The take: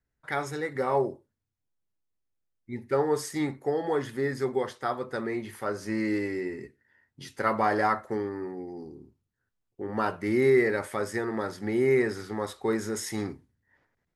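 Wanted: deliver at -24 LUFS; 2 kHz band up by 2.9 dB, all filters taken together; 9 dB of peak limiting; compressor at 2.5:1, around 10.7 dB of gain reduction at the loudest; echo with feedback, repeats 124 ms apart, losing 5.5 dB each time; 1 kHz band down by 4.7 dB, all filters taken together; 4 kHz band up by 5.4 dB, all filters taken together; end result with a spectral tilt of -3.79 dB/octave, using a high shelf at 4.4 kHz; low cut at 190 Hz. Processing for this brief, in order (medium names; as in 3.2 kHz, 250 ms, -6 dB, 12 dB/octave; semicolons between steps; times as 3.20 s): high-pass 190 Hz; peaking EQ 1 kHz -8.5 dB; peaking EQ 2 kHz +4.5 dB; peaking EQ 4 kHz +8 dB; treble shelf 4.4 kHz -3 dB; compression 2.5:1, threshold -35 dBFS; peak limiter -29.5 dBFS; feedback delay 124 ms, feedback 53%, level -5.5 dB; trim +14.5 dB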